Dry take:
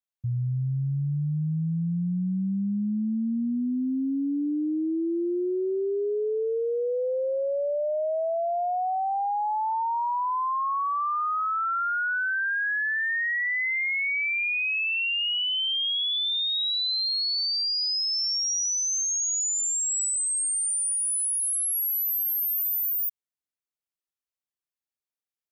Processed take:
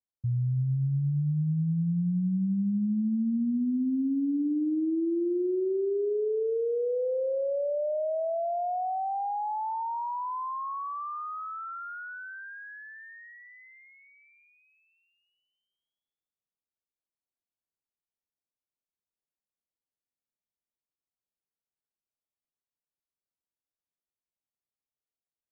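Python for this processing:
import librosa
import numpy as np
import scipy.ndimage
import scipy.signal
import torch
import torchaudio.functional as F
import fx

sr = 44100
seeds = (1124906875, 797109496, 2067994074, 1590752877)

y = scipy.ndimage.gaussian_filter1d(x, 8.5, mode='constant')
y = y + 10.0 ** (-18.0 / 20.0) * np.pad(y, (int(303 * sr / 1000.0), 0))[:len(y)]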